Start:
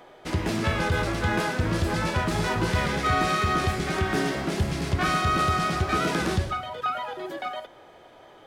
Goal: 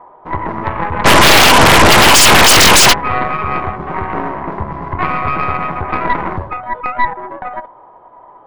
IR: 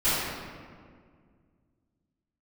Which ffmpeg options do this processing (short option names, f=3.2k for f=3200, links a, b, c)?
-filter_complex "[0:a]lowpass=f=1k:t=q:w=9.8,asplit=3[a][b][c];[a]afade=t=out:st=1.04:d=0.02[d];[b]aeval=exprs='0.562*sin(PI/2*8.91*val(0)/0.562)':c=same,afade=t=in:st=1.04:d=0.02,afade=t=out:st=2.92:d=0.02[e];[c]afade=t=in:st=2.92:d=0.02[f];[d][e][f]amix=inputs=3:normalize=0,aeval=exprs='0.562*(cos(1*acos(clip(val(0)/0.562,-1,1)))-cos(1*PI/2))+0.178*(cos(4*acos(clip(val(0)/0.562,-1,1)))-cos(4*PI/2))':c=same,volume=1dB"